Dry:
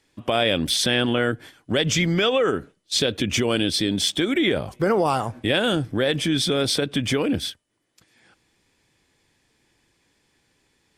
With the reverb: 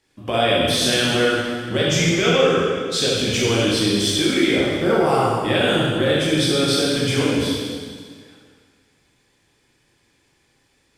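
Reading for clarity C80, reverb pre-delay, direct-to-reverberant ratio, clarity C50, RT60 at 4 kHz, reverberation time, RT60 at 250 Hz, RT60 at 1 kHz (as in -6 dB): 0.0 dB, 6 ms, -6.5 dB, -2.0 dB, 1.8 s, 1.9 s, 1.9 s, 1.9 s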